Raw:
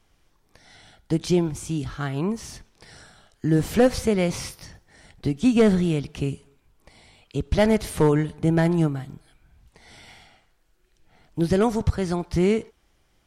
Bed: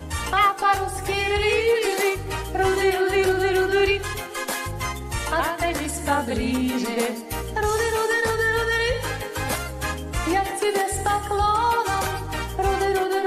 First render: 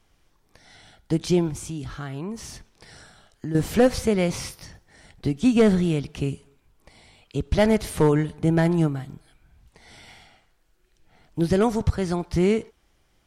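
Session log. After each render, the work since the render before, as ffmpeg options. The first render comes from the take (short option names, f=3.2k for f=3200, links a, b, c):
-filter_complex "[0:a]asettb=1/sr,asplit=3[a][b][c];[a]atrim=end=1.614[d];[b]atrim=start=1.61:end=3.55,asetpts=PTS-STARTPTS,afade=t=in:d=0.004:c=qsin,afade=t=out:st=1.936:d=0.004:c=qsin,acompressor=threshold=-30dB:ratio=2.5:attack=3.2:release=140:knee=1:detection=peak[e];[c]atrim=start=3.546[f];[d][e]acrossfade=d=0.004:c1=hsin:c2=qsin[g];[g][f]acrossfade=d=0.004:c1=qsin:c2=hsin"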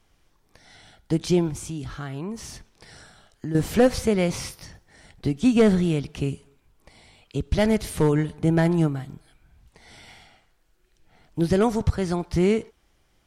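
-filter_complex "[0:a]asettb=1/sr,asplit=3[a][b][c];[a]atrim=end=7.384[d];[b]atrim=start=7.38:end=8.18,asetpts=PTS-STARTPTS,afade=t=in:d=0.004:c=qsin,afade=t=out:st=0.796:d=0.004:c=qsin,equalizer=f=850:t=o:w=2.3:g=-3.5[e];[c]atrim=start=8.176[f];[d][e]acrossfade=d=0.004:c1=hsin:c2=qsin[g];[g][f]acrossfade=d=0.004:c1=qsin:c2=hsin"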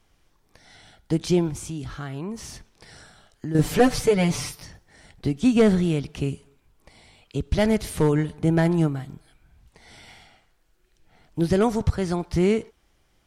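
-filter_complex "[0:a]asettb=1/sr,asplit=3[a][b][c];[a]atrim=end=3.584[d];[b]atrim=start=3.58:end=4.62,asetpts=PTS-STARTPTS,afade=t=in:d=0.004:c=qsin,afade=t=out:st=1.036:d=0.004:c=qsin,aecho=1:1:6.8:0.89,atrim=end_sample=45864[e];[c]atrim=start=4.616[f];[d][e]acrossfade=d=0.004:c1=hsin:c2=qsin[g];[g][f]acrossfade=d=0.004:c1=qsin:c2=hsin"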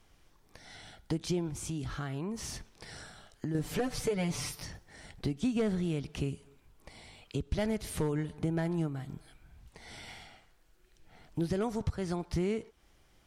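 -af "alimiter=limit=-12dB:level=0:latency=1:release=377,acompressor=threshold=-36dB:ratio=2"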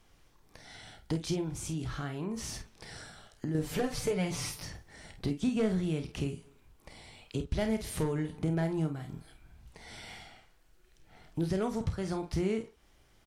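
-af "aecho=1:1:32|49:0.299|0.316"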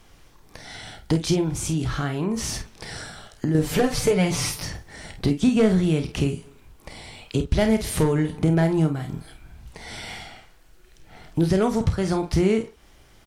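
-af "volume=11dB"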